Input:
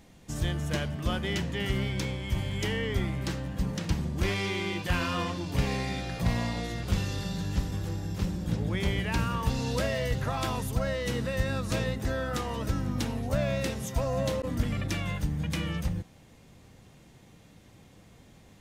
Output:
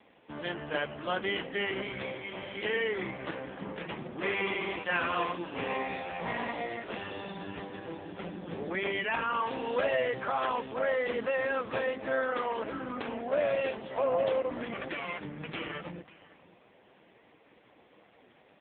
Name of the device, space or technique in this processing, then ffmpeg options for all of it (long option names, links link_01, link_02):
satellite phone: -filter_complex "[0:a]asettb=1/sr,asplit=3[link_01][link_02][link_03];[link_01]atrim=end=4.564[link_04];[link_02]atrim=start=4.56:end=5.28,asetpts=PTS-STARTPTS,afade=type=in:duration=0.004:curve=qsin,afade=type=out:start_time=0.716:duration=0.004:curve=qsin,highpass=59[link_05];[link_03]atrim=start=5.276[link_06];[link_04][link_05]acrossfade=duration=0.004:curve1=hsin:curve2=qsin[link_07];[link_07][link_06]acrossfade=duration=0.004:curve1=qsin:curve2=hsin,highpass=400,lowpass=3000,aecho=1:1:545:0.112,volume=6dB" -ar 8000 -c:a libopencore_amrnb -b:a 5150